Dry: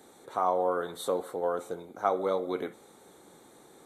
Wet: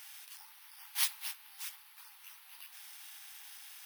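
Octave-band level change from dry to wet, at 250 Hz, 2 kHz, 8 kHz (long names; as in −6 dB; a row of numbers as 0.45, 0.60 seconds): below −40 dB, −2.0 dB, +8.0 dB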